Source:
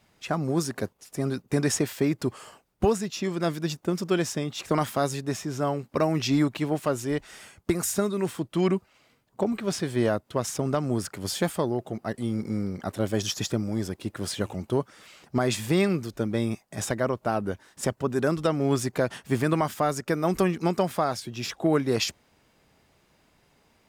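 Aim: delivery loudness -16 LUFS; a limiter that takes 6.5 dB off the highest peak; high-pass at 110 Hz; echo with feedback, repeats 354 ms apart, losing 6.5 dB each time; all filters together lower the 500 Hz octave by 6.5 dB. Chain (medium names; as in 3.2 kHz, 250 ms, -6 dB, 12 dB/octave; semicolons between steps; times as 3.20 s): high-pass 110 Hz; peaking EQ 500 Hz -9 dB; peak limiter -19 dBFS; feedback delay 354 ms, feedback 47%, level -6.5 dB; trim +15 dB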